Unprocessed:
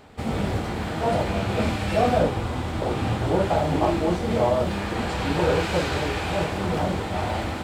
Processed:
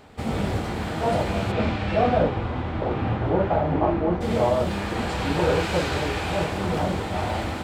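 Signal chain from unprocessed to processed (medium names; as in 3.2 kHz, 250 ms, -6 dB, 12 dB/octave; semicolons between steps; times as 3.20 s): 1.51–4.20 s: low-pass 4.2 kHz -> 1.6 kHz 12 dB/octave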